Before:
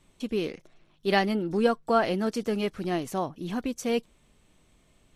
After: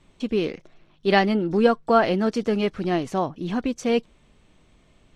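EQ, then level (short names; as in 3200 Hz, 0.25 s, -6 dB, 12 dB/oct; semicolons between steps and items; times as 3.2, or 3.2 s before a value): air absorption 78 m; +5.5 dB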